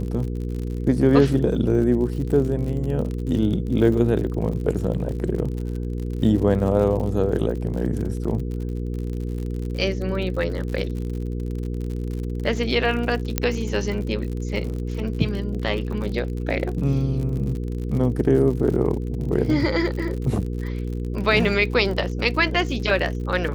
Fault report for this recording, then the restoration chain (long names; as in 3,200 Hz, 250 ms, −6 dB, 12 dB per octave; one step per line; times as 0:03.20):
surface crackle 56 per second −30 dBFS
mains hum 60 Hz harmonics 8 −27 dBFS
0:13.38: click −4 dBFS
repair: click removal
hum removal 60 Hz, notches 8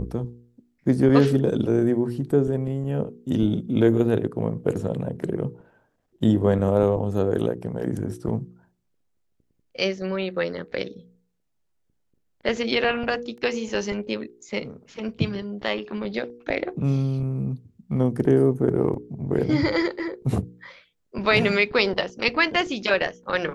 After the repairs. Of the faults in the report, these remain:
0:13.38: click